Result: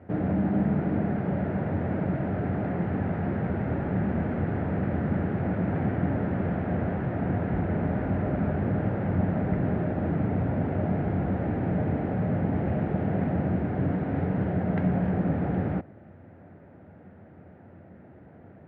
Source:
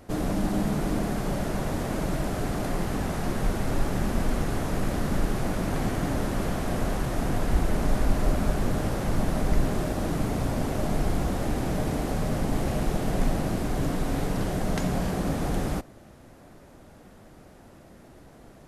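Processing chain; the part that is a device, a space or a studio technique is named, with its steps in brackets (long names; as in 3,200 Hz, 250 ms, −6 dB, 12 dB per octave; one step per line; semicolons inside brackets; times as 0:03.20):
bass cabinet (loudspeaker in its box 81–2,000 Hz, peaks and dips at 89 Hz +9 dB, 180 Hz +5 dB, 1,100 Hz −9 dB)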